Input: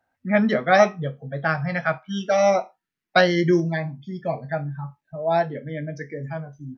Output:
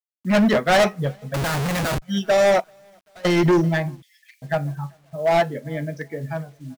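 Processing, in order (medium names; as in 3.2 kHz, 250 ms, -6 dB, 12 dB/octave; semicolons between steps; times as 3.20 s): hard clipper -20 dBFS, distortion -7 dB; 2.60–3.25 s: level held to a coarse grid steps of 20 dB; feedback delay 390 ms, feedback 45%, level -23.5 dB; bit crusher 9-bit; 1.34–2.02 s: Schmitt trigger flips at -36.5 dBFS; 4.02–4.42 s: Chebyshev high-pass 1.8 kHz, order 6; upward expansion 1.5:1, over -45 dBFS; trim +7 dB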